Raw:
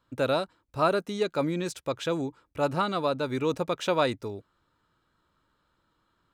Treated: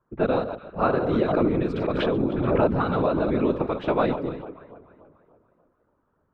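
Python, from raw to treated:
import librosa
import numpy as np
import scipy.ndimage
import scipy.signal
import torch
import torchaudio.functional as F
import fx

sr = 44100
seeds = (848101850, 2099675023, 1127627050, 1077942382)

y = fx.reverse_delay(x, sr, ms=110, wet_db=-11)
y = fx.echo_alternate(y, sr, ms=146, hz=1100.0, feedback_pct=70, wet_db=-12.0)
y = fx.env_lowpass(y, sr, base_hz=1300.0, full_db=-24.0)
y = fx.dynamic_eq(y, sr, hz=260.0, q=1.1, threshold_db=-40.0, ratio=4.0, max_db=5)
y = fx.whisperise(y, sr, seeds[0])
y = fx.air_absorb(y, sr, metres=450.0)
y = fx.hum_notches(y, sr, base_hz=60, count=2)
y = fx.pre_swell(y, sr, db_per_s=29.0, at=(0.99, 3.44))
y = y * librosa.db_to_amplitude(2.5)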